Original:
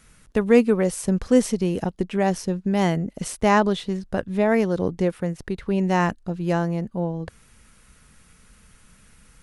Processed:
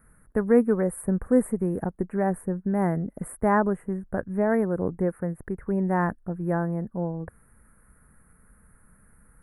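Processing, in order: elliptic band-stop 1700–9700 Hz, stop band 60 dB; gain -3 dB

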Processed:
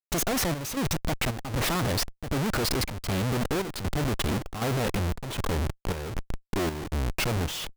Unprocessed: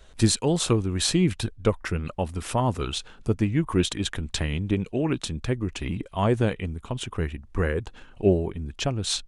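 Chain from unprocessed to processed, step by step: speed glide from 158% -> 81%; Schmitt trigger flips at -36.5 dBFS; chopper 1.3 Hz, depth 60%, duty 70%

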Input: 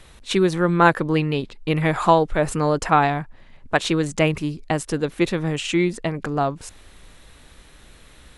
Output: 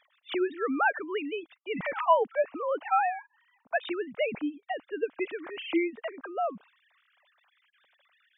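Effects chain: sine-wave speech; bell 360 Hz -8.5 dB 0.42 oct; gain -6.5 dB

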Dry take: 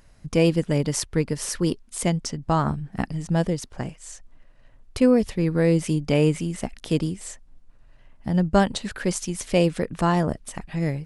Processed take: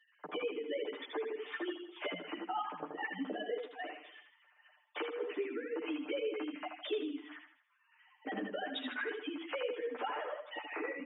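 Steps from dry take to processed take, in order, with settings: sine-wave speech; steep high-pass 260 Hz 48 dB/oct; high shelf 2700 Hz +9 dB; comb 6.7 ms, depth 66%; limiter -17 dBFS, peak gain reduction 11 dB; compressor, threshold -33 dBFS, peak gain reduction 12.5 dB; on a send: feedback echo 79 ms, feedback 43%, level -6 dB; on the sum: ensemble effect; gain -1 dB

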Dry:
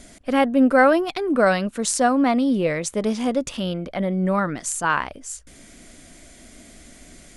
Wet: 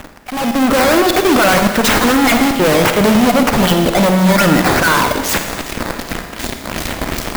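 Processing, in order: random spectral dropouts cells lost 21%; fuzz box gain 37 dB, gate -44 dBFS; reverse; compressor 6:1, threshold -24 dBFS, peak gain reduction 10 dB; reverse; decimation with a swept rate 9×, swing 160% 2.6 Hz; AGC gain up to 14 dB; Schroeder reverb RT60 1.4 s, DRR 5 dB; clock jitter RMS 0.022 ms; gain -1.5 dB

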